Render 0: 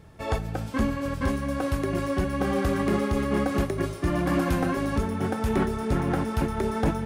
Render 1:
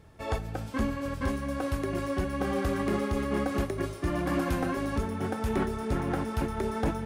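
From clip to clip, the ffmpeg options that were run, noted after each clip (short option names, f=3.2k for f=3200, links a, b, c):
-af "equalizer=f=160:w=2.6:g=-4,volume=-3.5dB"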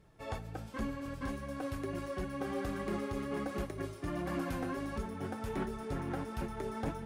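-af "flanger=delay=5.1:depth=3.1:regen=-39:speed=1.4:shape=triangular,volume=-4dB"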